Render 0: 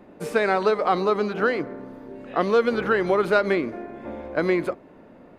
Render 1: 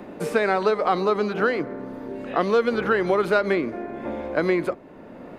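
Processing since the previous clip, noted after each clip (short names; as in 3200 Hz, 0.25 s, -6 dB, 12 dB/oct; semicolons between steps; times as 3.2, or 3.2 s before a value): three-band squash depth 40%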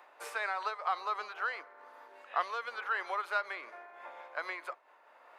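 ladder high-pass 760 Hz, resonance 30%; noise-modulated level, depth 60%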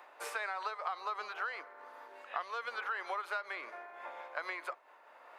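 compressor 6:1, threshold -36 dBFS, peak gain reduction 11 dB; gain +2 dB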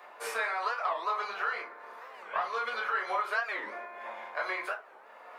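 reverb RT60 0.35 s, pre-delay 4 ms, DRR -3.5 dB; record warp 45 rpm, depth 250 cents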